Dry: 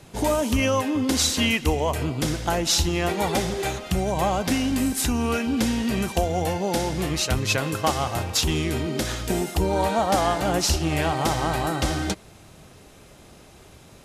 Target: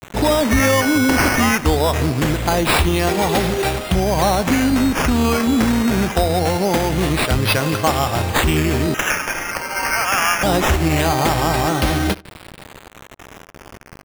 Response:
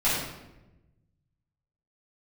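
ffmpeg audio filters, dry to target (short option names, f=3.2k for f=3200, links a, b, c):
-filter_complex "[0:a]asplit=2[a][b];[b]alimiter=limit=-19.5dB:level=0:latency=1:release=126,volume=1dB[c];[a][c]amix=inputs=2:normalize=0,asettb=1/sr,asplit=3[d][e][f];[d]atrim=end=8.944[g];[e]atrim=start=8.94:end=10.43,asetpts=PTS-STARTPTS,afade=t=in:d=0.004:c=qsin,afade=t=out:st=1.486:d=0.004:c=qsin,highpass=f=1.5k:t=q:w=3.7[h];[f]atrim=start=10.426[i];[g][h]acrossfade=d=0.004:c1=hsin:c2=qsin[j];[j][i]acrossfade=d=0.004:c1=qsin:c2=hsin,acrusher=bits=5:mix=0:aa=0.000001,asettb=1/sr,asplit=3[k][l][m];[k]atrim=end=0.514[n];[l]atrim=start=0.51:end=1.41,asetpts=PTS-STARTPTS,afade=t=in:d=0.004:c=qsin,afade=t=out:st=0.896:d=0.004:c=qsin,aeval=exprs='val(0)+0.0708*sin(2*PI*2200*n/s)':c=same[o];[m]atrim=start=1.406[p];[n][o]acrossfade=d=0.004:c1=hsin:c2=qsin[q];[q][p]acrossfade=d=0.004:c1=qsin:c2=hsin,acrusher=samples=9:mix=1:aa=0.000001:lfo=1:lforange=5.4:lforate=0.23,asplit=2[r][s];[s]adelay=77,lowpass=f=1.9k:p=1,volume=-23dB,asplit=2[t][u];[u]adelay=77,lowpass=f=1.9k:p=1,volume=0.37[v];[r][t][v]amix=inputs=3:normalize=0,volume=2.5dB"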